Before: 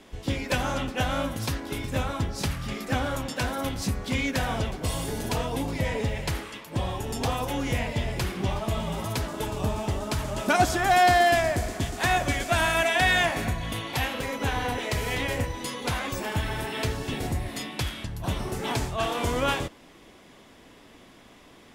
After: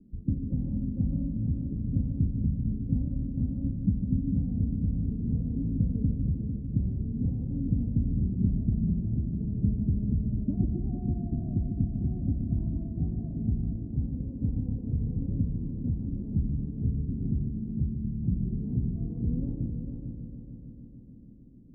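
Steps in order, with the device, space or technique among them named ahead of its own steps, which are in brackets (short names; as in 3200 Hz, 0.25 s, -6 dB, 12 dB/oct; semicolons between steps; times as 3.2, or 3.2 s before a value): the neighbour's flat through the wall (LPF 250 Hz 24 dB/oct; bell 190 Hz +5.5 dB 0.73 oct); multi-head echo 0.15 s, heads first and third, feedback 64%, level -8 dB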